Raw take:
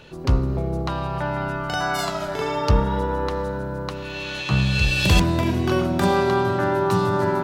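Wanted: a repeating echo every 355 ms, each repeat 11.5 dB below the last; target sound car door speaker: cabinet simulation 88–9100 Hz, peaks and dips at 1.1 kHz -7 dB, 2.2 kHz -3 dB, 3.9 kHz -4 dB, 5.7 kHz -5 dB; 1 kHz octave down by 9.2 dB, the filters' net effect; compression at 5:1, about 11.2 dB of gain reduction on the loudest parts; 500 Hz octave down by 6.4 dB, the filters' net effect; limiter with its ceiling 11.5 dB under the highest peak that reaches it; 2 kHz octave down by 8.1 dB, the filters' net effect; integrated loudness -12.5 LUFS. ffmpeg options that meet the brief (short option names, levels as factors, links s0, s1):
-af "equalizer=f=500:t=o:g=-7.5,equalizer=f=1000:t=o:g=-4,equalizer=f=2000:t=o:g=-8.5,acompressor=threshold=0.0562:ratio=5,alimiter=level_in=1.19:limit=0.0631:level=0:latency=1,volume=0.841,highpass=88,equalizer=f=1100:t=q:w=4:g=-7,equalizer=f=2200:t=q:w=4:g=-3,equalizer=f=3900:t=q:w=4:g=-4,equalizer=f=5700:t=q:w=4:g=-5,lowpass=f=9100:w=0.5412,lowpass=f=9100:w=1.3066,aecho=1:1:355|710|1065:0.266|0.0718|0.0194,volume=14.1"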